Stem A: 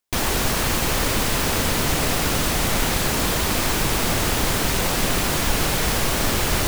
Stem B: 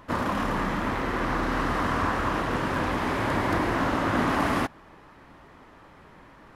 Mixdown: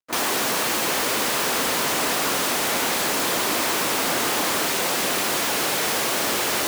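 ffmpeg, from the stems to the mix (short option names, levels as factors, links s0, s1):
-filter_complex "[0:a]volume=1.12[s0];[1:a]volume=0.631[s1];[s0][s1]amix=inputs=2:normalize=0,highpass=310,acrusher=bits=6:mix=0:aa=0.5,asoftclip=type=hard:threshold=0.126"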